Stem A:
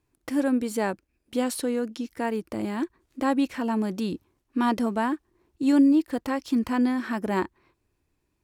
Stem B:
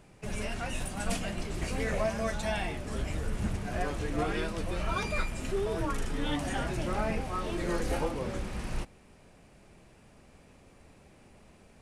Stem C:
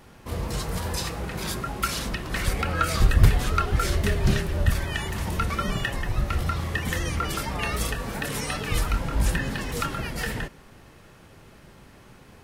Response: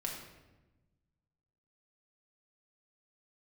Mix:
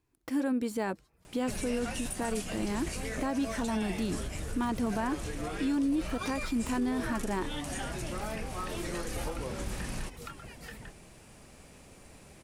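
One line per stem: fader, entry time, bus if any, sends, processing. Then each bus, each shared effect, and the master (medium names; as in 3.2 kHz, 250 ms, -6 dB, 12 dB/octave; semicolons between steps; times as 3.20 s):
-3.0 dB, 0.00 s, no send, band-stop 580 Hz, Q 16; de-esser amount 75%
+2.5 dB, 1.25 s, no send, treble shelf 4.8 kHz +11 dB; compression 5:1, threshold -36 dBFS, peak gain reduction 11 dB
-15.5 dB, 0.45 s, no send, reverb removal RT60 0.61 s; auto duck -23 dB, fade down 1.15 s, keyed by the first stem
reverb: none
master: peak limiter -23 dBFS, peak gain reduction 9.5 dB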